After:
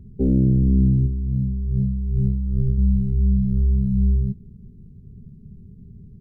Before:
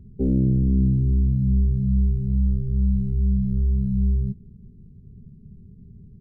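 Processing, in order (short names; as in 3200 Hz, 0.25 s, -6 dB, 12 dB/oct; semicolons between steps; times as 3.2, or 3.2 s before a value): 1.06–2.78 negative-ratio compressor -24 dBFS, ratio -1; gain +2.5 dB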